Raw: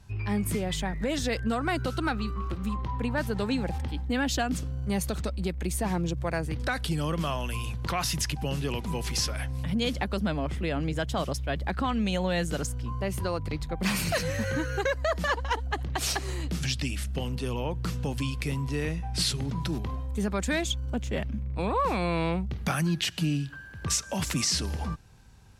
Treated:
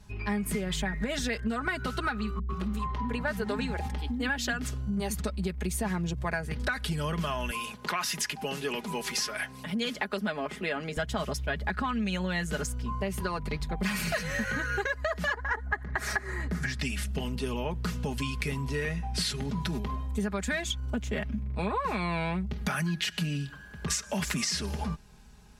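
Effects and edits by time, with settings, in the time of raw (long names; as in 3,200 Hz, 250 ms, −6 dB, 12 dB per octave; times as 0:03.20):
0:02.39–0:05.19: multiband delay without the direct sound lows, highs 100 ms, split 250 Hz
0:07.51–0:10.97: high-pass filter 260 Hz
0:15.33–0:16.80: high shelf with overshoot 2,300 Hz −7 dB, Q 3
whole clip: comb filter 4.8 ms, depth 67%; dynamic equaliser 1,700 Hz, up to +7 dB, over −44 dBFS, Q 1.5; downward compressor, threshold −27 dBFS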